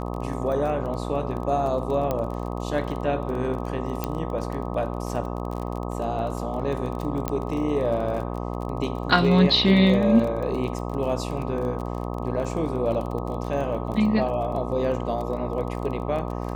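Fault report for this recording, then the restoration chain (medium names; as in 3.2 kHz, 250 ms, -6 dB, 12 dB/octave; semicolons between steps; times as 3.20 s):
buzz 60 Hz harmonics 21 -30 dBFS
crackle 24 per s -31 dBFS
2.11 s: pop -13 dBFS
4.04 s: pop -11 dBFS
7.28 s: pop -11 dBFS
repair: de-click; de-hum 60 Hz, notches 21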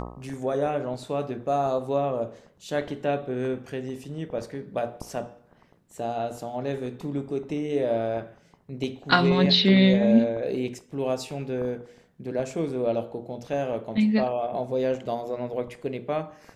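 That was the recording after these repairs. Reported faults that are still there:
nothing left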